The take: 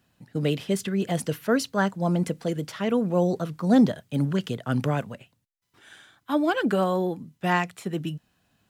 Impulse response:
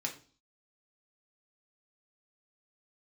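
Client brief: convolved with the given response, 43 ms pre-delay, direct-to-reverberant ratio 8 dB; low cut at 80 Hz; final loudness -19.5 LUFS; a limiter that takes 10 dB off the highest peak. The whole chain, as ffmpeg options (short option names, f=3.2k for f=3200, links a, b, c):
-filter_complex "[0:a]highpass=80,alimiter=limit=-19.5dB:level=0:latency=1,asplit=2[a][b];[1:a]atrim=start_sample=2205,adelay=43[c];[b][c]afir=irnorm=-1:irlink=0,volume=-10dB[d];[a][d]amix=inputs=2:normalize=0,volume=9.5dB"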